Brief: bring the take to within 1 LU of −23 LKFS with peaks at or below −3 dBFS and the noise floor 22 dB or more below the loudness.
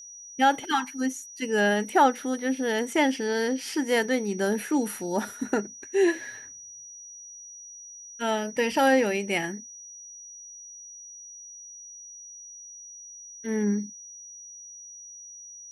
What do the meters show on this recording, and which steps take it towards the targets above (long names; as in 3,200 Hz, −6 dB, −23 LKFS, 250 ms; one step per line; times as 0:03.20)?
interfering tone 5,800 Hz; level of the tone −42 dBFS; integrated loudness −26.0 LKFS; sample peak −9.0 dBFS; target loudness −23.0 LKFS
→ notch filter 5,800 Hz, Q 30
level +3 dB